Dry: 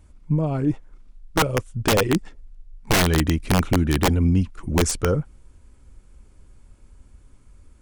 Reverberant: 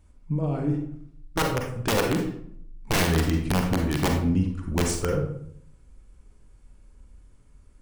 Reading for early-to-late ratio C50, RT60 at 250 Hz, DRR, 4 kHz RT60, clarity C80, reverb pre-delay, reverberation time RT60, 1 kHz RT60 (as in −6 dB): 5.0 dB, 0.85 s, 2.0 dB, 0.45 s, 8.5 dB, 37 ms, 0.65 s, 0.60 s